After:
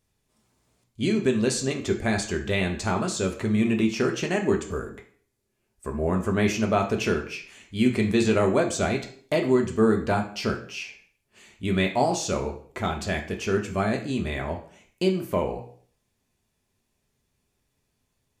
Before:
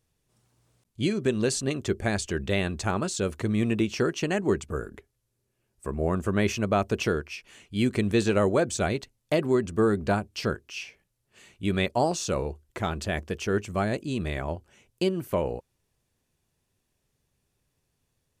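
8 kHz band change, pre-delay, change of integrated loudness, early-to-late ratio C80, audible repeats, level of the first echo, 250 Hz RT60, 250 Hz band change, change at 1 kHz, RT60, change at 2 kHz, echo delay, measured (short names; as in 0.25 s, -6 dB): +1.5 dB, 3 ms, +2.0 dB, 13.5 dB, none, none, 0.60 s, +3.0 dB, +2.5 dB, 0.50 s, +2.5 dB, none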